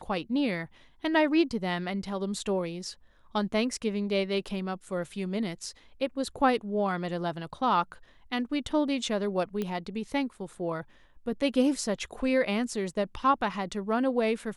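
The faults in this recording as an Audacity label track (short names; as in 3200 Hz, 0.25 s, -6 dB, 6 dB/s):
9.620000	9.620000	pop -19 dBFS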